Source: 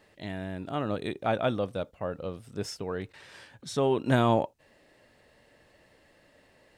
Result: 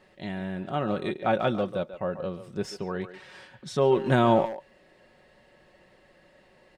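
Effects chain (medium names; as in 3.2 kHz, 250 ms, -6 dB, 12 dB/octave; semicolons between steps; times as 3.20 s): low-pass 4 kHz 6 dB/octave; comb 5.4 ms, depth 49%; speakerphone echo 140 ms, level -11 dB; trim +2 dB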